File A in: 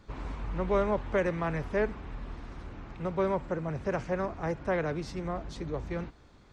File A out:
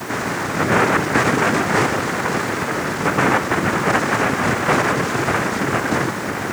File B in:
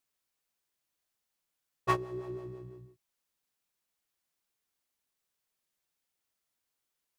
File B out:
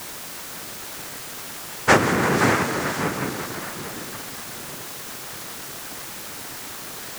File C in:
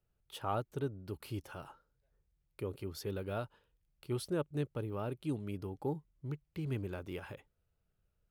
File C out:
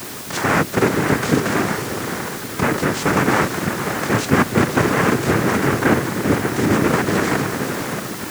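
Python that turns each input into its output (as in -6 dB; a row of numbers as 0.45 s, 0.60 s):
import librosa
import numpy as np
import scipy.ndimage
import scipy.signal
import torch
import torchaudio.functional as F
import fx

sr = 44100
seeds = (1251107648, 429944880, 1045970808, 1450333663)

p1 = fx.bin_compress(x, sr, power=0.4)
p2 = p1 + fx.echo_diffused(p1, sr, ms=570, feedback_pct=43, wet_db=-6.0, dry=0)
p3 = fx.noise_vocoder(p2, sr, seeds[0], bands=3)
p4 = fx.quant_dither(p3, sr, seeds[1], bits=6, dither='triangular')
p5 = p3 + (p4 * librosa.db_to_amplitude(-10.0))
p6 = fx.doppler_dist(p5, sr, depth_ms=0.14)
y = librosa.util.normalize(p6) * 10.0 ** (-1.5 / 20.0)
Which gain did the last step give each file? +5.0 dB, +10.0 dB, +13.0 dB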